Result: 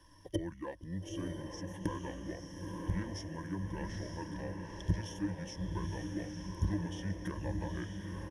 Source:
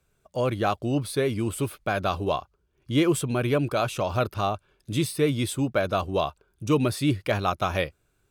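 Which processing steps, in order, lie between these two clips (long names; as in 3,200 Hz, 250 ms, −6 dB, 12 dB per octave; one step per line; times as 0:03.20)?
one scale factor per block 7 bits
pitch shifter −7 semitones
gate with flip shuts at −27 dBFS, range −27 dB
EQ curve with evenly spaced ripples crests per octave 1.2, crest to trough 16 dB
on a send: feedback delay with all-pass diffusion 923 ms, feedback 51%, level −3 dB
on the sum: level +7 dB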